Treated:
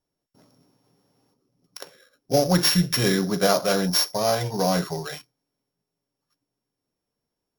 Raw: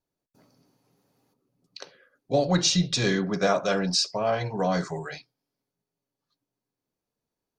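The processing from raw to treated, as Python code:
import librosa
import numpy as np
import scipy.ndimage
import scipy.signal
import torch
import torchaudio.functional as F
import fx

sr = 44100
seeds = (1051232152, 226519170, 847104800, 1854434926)

y = np.r_[np.sort(x[:len(x) // 8 * 8].reshape(-1, 8), axis=1).ravel(), x[len(x) // 8 * 8:]]
y = y * 10.0 ** (3.0 / 20.0)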